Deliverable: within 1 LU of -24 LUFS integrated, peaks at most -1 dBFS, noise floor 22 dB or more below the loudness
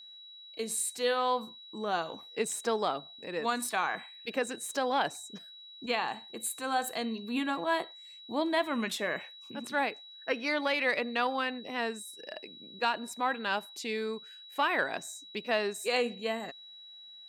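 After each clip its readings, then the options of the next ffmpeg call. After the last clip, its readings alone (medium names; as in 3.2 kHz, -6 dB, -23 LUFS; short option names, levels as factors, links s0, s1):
steady tone 3.9 kHz; tone level -48 dBFS; loudness -32.5 LUFS; peak level -15.5 dBFS; loudness target -24.0 LUFS
-> -af "bandreject=f=3900:w=30"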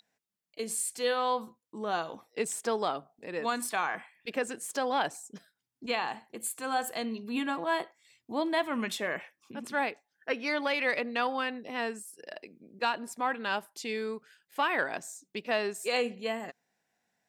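steady tone not found; loudness -32.5 LUFS; peak level -16.0 dBFS; loudness target -24.0 LUFS
-> -af "volume=2.66"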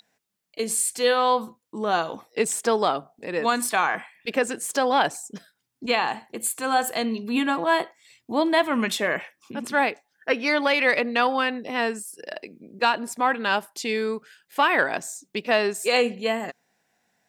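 loudness -24.0 LUFS; peak level -7.5 dBFS; noise floor -76 dBFS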